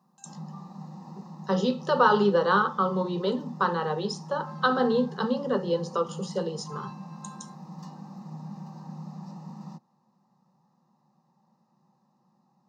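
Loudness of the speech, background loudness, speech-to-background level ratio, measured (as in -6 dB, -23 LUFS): -26.5 LUFS, -42.5 LUFS, 16.0 dB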